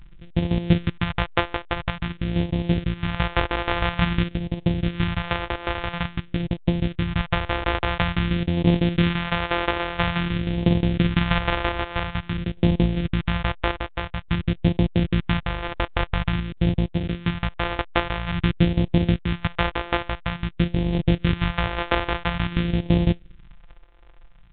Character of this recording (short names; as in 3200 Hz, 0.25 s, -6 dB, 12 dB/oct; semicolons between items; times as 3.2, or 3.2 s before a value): a buzz of ramps at a fixed pitch in blocks of 256 samples; phasing stages 2, 0.49 Hz, lowest notch 170–1300 Hz; random-step tremolo; A-law